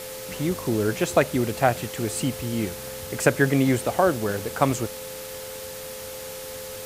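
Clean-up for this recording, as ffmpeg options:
ffmpeg -i in.wav -af "adeclick=threshold=4,bandreject=frequency=429.3:width_type=h:width=4,bandreject=frequency=858.6:width_type=h:width=4,bandreject=frequency=1287.9:width_type=h:width=4,bandreject=frequency=1717.2:width_type=h:width=4,bandreject=frequency=2146.5:width_type=h:width=4,bandreject=frequency=520:width=30,afwtdn=0.013" out.wav

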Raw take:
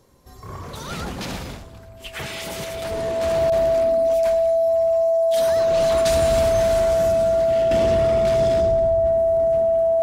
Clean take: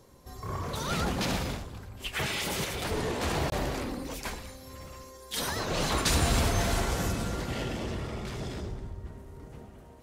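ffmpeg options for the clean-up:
ffmpeg -i in.wav -af "bandreject=frequency=660:width=30,asetnsamples=nb_out_samples=441:pad=0,asendcmd='7.71 volume volume -9dB',volume=0dB" out.wav

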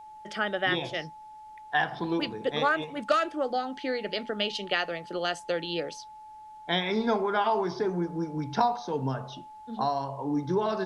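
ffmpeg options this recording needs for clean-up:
ffmpeg -i in.wav -af "bandreject=frequency=860:width=30,agate=range=-21dB:threshold=-39dB" out.wav

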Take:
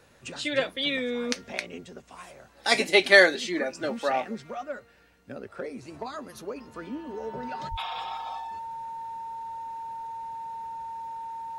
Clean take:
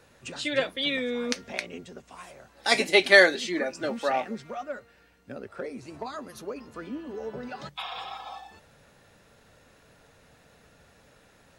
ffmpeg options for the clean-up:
ffmpeg -i in.wav -filter_complex "[0:a]bandreject=frequency=910:width=30,asplit=3[link_01][link_02][link_03];[link_01]afade=type=out:start_time=7.7:duration=0.02[link_04];[link_02]highpass=frequency=140:width=0.5412,highpass=frequency=140:width=1.3066,afade=type=in:start_time=7.7:duration=0.02,afade=type=out:start_time=7.82:duration=0.02[link_05];[link_03]afade=type=in:start_time=7.82:duration=0.02[link_06];[link_04][link_05][link_06]amix=inputs=3:normalize=0" out.wav

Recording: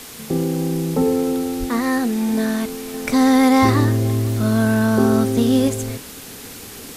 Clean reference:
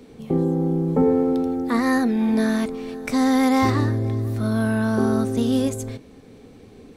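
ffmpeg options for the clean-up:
ffmpeg -i in.wav -filter_complex "[0:a]asplit=3[link_01][link_02][link_03];[link_01]afade=type=out:start_time=1.59:duration=0.02[link_04];[link_02]highpass=frequency=140:width=0.5412,highpass=frequency=140:width=1.3066,afade=type=in:start_time=1.59:duration=0.02,afade=type=out:start_time=1.71:duration=0.02[link_05];[link_03]afade=type=in:start_time=1.71:duration=0.02[link_06];[link_04][link_05][link_06]amix=inputs=3:normalize=0,afwtdn=0.016,asetnsamples=nb_out_samples=441:pad=0,asendcmd='2.94 volume volume -4.5dB',volume=0dB" out.wav

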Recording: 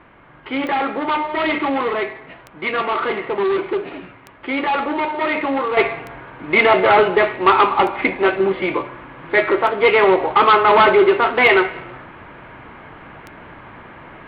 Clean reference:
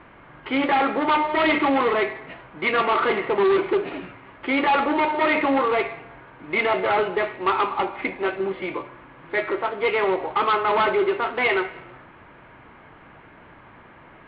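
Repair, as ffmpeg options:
ffmpeg -i in.wav -af "adeclick=threshold=4,asetnsamples=nb_out_samples=441:pad=0,asendcmd='5.77 volume volume -8.5dB',volume=0dB" out.wav

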